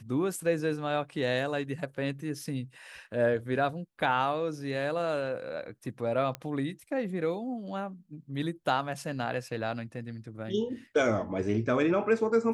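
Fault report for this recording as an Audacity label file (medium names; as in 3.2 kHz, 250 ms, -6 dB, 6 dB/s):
6.350000	6.350000	pop -20 dBFS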